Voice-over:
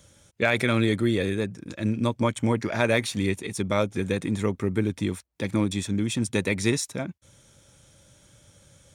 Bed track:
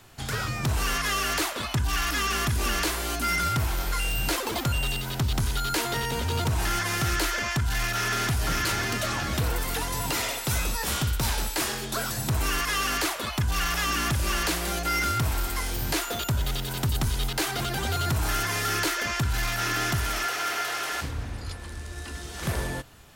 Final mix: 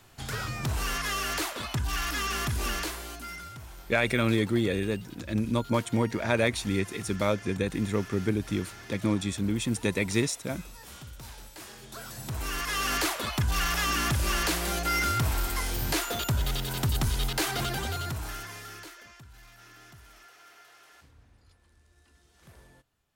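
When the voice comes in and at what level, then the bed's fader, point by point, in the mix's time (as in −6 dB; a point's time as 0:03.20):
3.50 s, −2.5 dB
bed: 0:02.70 −4 dB
0:03.55 −18.5 dB
0:11.54 −18.5 dB
0:12.94 −1 dB
0:17.66 −1 dB
0:19.28 −25.5 dB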